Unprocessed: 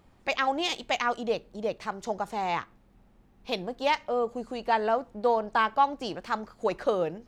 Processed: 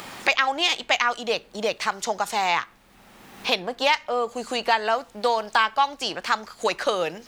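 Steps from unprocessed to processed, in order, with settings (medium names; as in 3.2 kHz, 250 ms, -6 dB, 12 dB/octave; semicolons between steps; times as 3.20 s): tilt shelf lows -8.5 dB, about 790 Hz; three bands compressed up and down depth 70%; trim +3.5 dB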